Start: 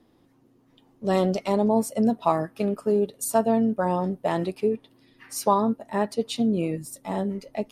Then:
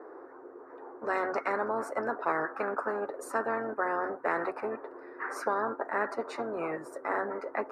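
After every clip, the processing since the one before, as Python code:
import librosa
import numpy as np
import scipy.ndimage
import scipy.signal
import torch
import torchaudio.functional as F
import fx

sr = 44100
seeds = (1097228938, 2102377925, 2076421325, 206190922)

y = scipy.signal.sosfilt(scipy.signal.ellip(3, 1.0, 40, [400.0, 1500.0], 'bandpass', fs=sr, output='sos'), x)
y = fx.peak_eq(y, sr, hz=730.0, db=-7.5, octaves=1.4)
y = fx.spectral_comp(y, sr, ratio=4.0)
y = F.gain(torch.from_numpy(y), -1.0).numpy()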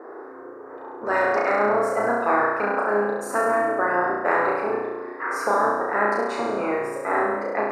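y = fx.room_flutter(x, sr, wall_m=5.8, rt60_s=1.1)
y = F.gain(torch.from_numpy(y), 5.5).numpy()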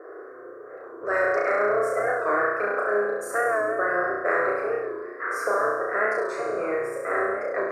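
y = fx.fixed_phaser(x, sr, hz=880.0, stages=6)
y = fx.record_warp(y, sr, rpm=45.0, depth_cents=100.0)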